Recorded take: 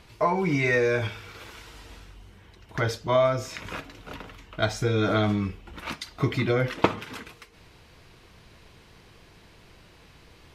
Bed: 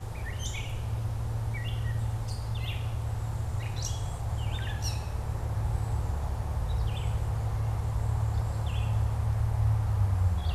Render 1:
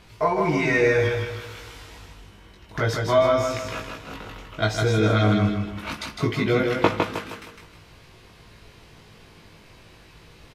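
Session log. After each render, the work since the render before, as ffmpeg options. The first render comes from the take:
-filter_complex "[0:a]asplit=2[s0][s1];[s1]adelay=19,volume=0.75[s2];[s0][s2]amix=inputs=2:normalize=0,aecho=1:1:157|314|471|628|785:0.631|0.246|0.096|0.0374|0.0146"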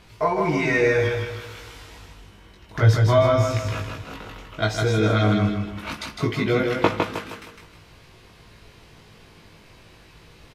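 -filter_complex "[0:a]asettb=1/sr,asplit=3[s0][s1][s2];[s0]atrim=end=2.824[s3];[s1]atrim=start=2.82:end=4.04,asetpts=PTS-STARTPTS,afade=t=in:d=0.004:c=qsin,afade=t=out:st=1.216:d=0.004:c=qsin,equalizer=f=100:w=1.4:g=13.5[s4];[s2]atrim=start=4.036[s5];[s3][s4]acrossfade=d=0.004:c1=hsin:c2=qsin[s6];[s6][s5]acrossfade=d=0.004:c1=qsin:c2=hsin"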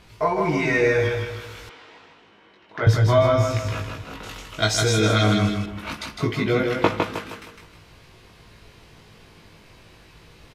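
-filter_complex "[0:a]asettb=1/sr,asplit=3[s0][s1][s2];[s0]atrim=end=1.694[s3];[s1]atrim=start=1.69:end=2.87,asetpts=PTS-STARTPTS,afade=t=in:d=0.004:c=qsin,afade=t=out:st=1.176:d=0.004:c=qsin,highpass=290,lowpass=3300[s4];[s2]atrim=start=2.866[s5];[s3][s4]acrossfade=d=0.004:c1=hsin:c2=qsin[s6];[s6][s5]acrossfade=d=0.004:c1=qsin:c2=hsin,asettb=1/sr,asplit=3[s7][s8][s9];[s7]atrim=end=4.234[s10];[s8]atrim=start=4.23:end=5.66,asetpts=PTS-STARTPTS,afade=t=in:d=0.004:c=qsin,afade=t=out:st=1.426:d=0.004:c=qsin,equalizer=f=8100:t=o:w=2.3:g=13[s11];[s9]atrim=start=5.656[s12];[s10][s11]acrossfade=d=0.004:c1=hsin:c2=qsin[s13];[s13][s12]acrossfade=d=0.004:c1=qsin:c2=hsin"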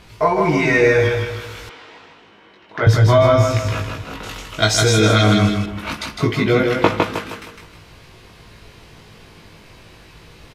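-af "volume=1.88,alimiter=limit=0.708:level=0:latency=1"

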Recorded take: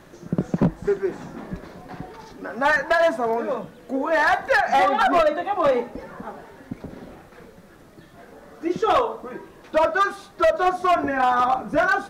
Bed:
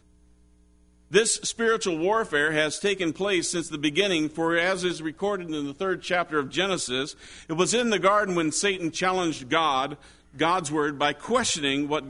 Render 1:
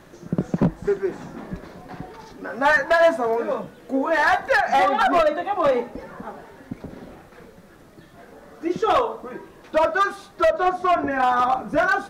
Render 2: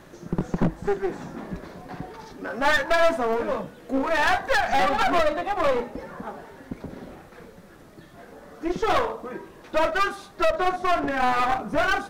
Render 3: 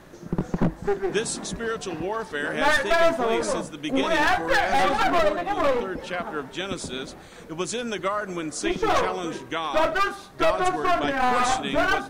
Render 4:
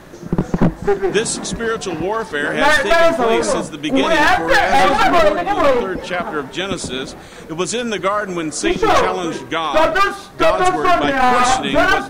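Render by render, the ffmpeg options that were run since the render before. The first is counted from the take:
-filter_complex "[0:a]asettb=1/sr,asplit=3[s0][s1][s2];[s0]atrim=end=2.454[s3];[s1]atrim=start=2.45:end=4.4,asetpts=PTS-STARTPTS,afade=t=in:d=0.004:c=qsin,afade=t=out:st=1.946:d=0.004:c=qsin,asplit=2[s4][s5];[s5]adelay=15,volume=0.473[s6];[s4][s6]amix=inputs=2:normalize=0,atrim=end_sample=85995[s7];[s2]atrim=start=4.396[s8];[s3][s7]acrossfade=d=0.004:c1=hsin:c2=qsin[s9];[s9][s8]acrossfade=d=0.004:c1=qsin:c2=hsin,asettb=1/sr,asplit=3[s10][s11][s12];[s10]atrim=end=10.484[s13];[s11]atrim=start=10.48:end=11.11,asetpts=PTS-STARTPTS,afade=t=in:d=0.004:c=qsin,afade=t=out:st=0.626:d=0.004:c=qsin,highshelf=f=4800:g=-7.5[s14];[s12]atrim=start=11.106[s15];[s13][s14]acrossfade=d=0.004:c1=hsin:c2=qsin[s16];[s16][s15]acrossfade=d=0.004:c1=qsin:c2=hsin"
-af "aeval=exprs='clip(val(0),-1,0.0447)':c=same"
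-filter_complex "[1:a]volume=0.501[s0];[0:a][s0]amix=inputs=2:normalize=0"
-af "volume=2.66,alimiter=limit=0.794:level=0:latency=1"

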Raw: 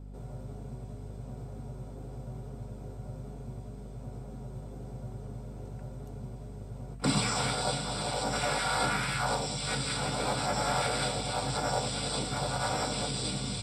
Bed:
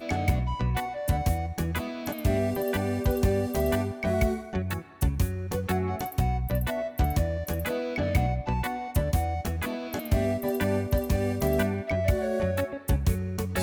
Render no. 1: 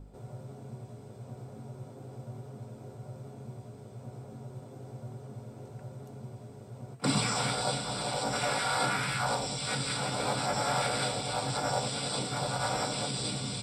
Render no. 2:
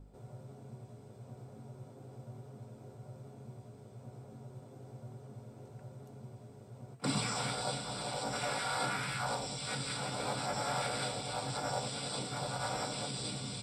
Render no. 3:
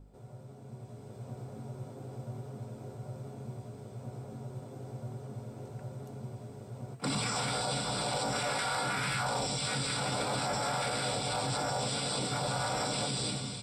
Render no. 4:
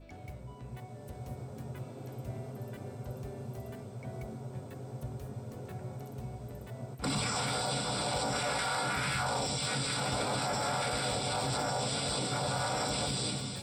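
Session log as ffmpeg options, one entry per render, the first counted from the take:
-af "bandreject=f=50:t=h:w=4,bandreject=f=100:t=h:w=4,bandreject=f=150:t=h:w=4,bandreject=f=200:t=h:w=4,bandreject=f=250:t=h:w=4,bandreject=f=300:t=h:w=4,bandreject=f=350:t=h:w=4,bandreject=f=400:t=h:w=4,bandreject=f=450:t=h:w=4"
-af "volume=0.531"
-af "dynaudnorm=f=600:g=3:m=2.24,alimiter=limit=0.0631:level=0:latency=1:release=12"
-filter_complex "[1:a]volume=0.0794[s0];[0:a][s0]amix=inputs=2:normalize=0"

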